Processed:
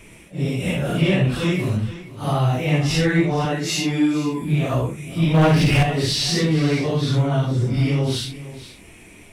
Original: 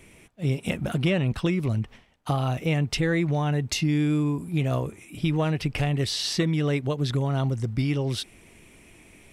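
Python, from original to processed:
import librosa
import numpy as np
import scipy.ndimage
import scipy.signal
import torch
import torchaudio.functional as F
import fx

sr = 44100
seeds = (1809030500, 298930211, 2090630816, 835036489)

p1 = fx.phase_scramble(x, sr, seeds[0], window_ms=200)
p2 = fx.tilt_eq(p1, sr, slope=1.5, at=(1.32, 1.77))
p3 = fx.highpass(p2, sr, hz=270.0, slope=12, at=(3.45, 4.42))
p4 = fx.leveller(p3, sr, passes=2, at=(5.34, 5.83))
p5 = 10.0 ** (-24.0 / 20.0) * np.tanh(p4 / 10.0 ** (-24.0 / 20.0))
p6 = p4 + F.gain(torch.from_numpy(p5), -5.5).numpy()
p7 = p6 + 10.0 ** (-15.5 / 20.0) * np.pad(p6, (int(470 * sr / 1000.0), 0))[:len(p6)]
y = F.gain(torch.from_numpy(p7), 3.0).numpy()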